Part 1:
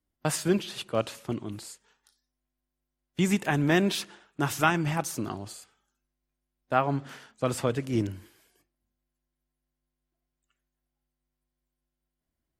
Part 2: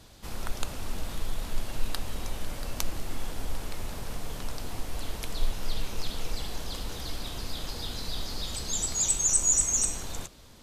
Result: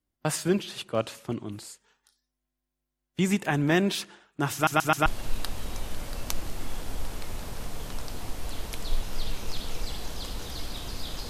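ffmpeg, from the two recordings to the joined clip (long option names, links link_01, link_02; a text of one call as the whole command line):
ffmpeg -i cue0.wav -i cue1.wav -filter_complex "[0:a]apad=whole_dur=11.29,atrim=end=11.29,asplit=4[link_01][link_02][link_03][link_04];[link_01]atrim=end=4.672[link_05];[link_02]atrim=start=4.538:end=4.672[link_06];[link_03]atrim=start=4.538:end=4.672[link_07];[link_04]atrim=start=4.538:end=4.672[link_08];[1:a]atrim=start=1.558:end=7.79[link_09];[link_05][link_06]acrossfade=duration=0.004:curve1=hsin:curve2=hsin[link_10];[link_10][link_07]acrossfade=duration=0.004:curve1=hsin:curve2=hsin[link_11];[link_11][link_08]acrossfade=duration=0.004:curve1=hsin:curve2=hsin[link_12];[link_12][link_09]acrossfade=duration=0.004:curve1=hsin:curve2=hsin" out.wav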